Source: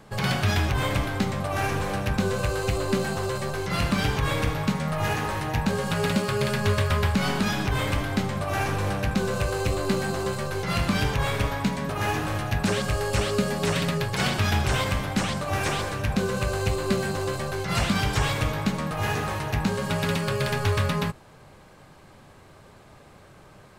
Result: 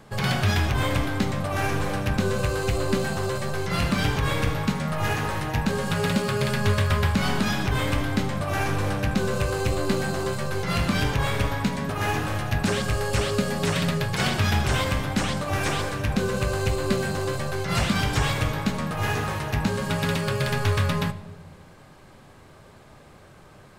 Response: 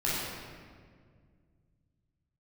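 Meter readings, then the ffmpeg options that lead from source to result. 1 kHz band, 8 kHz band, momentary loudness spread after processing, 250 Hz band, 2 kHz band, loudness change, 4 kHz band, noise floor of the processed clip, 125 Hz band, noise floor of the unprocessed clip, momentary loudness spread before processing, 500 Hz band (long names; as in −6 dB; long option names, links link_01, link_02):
0.0 dB, +0.5 dB, 4 LU, +1.0 dB, +1.0 dB, +1.0 dB, +0.5 dB, −50 dBFS, +1.5 dB, −51 dBFS, 4 LU, 0.0 dB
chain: -filter_complex "[0:a]asplit=2[link_01][link_02];[1:a]atrim=start_sample=2205,asetrate=83790,aresample=44100[link_03];[link_02][link_03]afir=irnorm=-1:irlink=0,volume=-18dB[link_04];[link_01][link_04]amix=inputs=2:normalize=0"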